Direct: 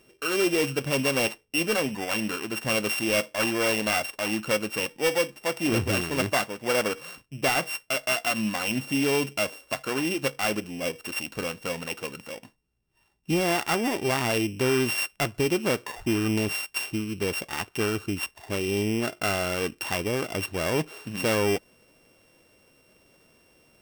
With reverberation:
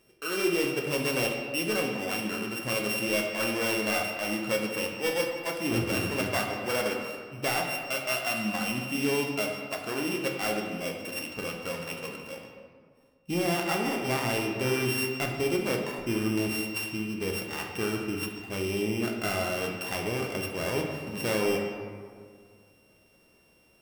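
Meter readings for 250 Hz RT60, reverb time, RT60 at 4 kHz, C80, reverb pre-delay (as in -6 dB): 2.2 s, 2.0 s, 1.1 s, 5.0 dB, 6 ms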